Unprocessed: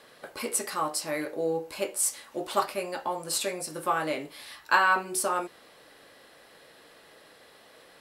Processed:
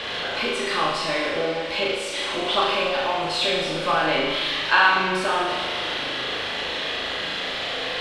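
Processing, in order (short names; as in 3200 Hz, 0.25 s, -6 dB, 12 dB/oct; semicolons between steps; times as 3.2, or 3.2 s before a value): zero-crossing step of -28.5 dBFS; synth low-pass 3300 Hz, resonance Q 2.8; flutter echo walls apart 6.5 m, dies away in 0.85 s; on a send at -7 dB: reverb RT60 3.3 s, pre-delay 17 ms; on the sum: MP3 80 kbps 48000 Hz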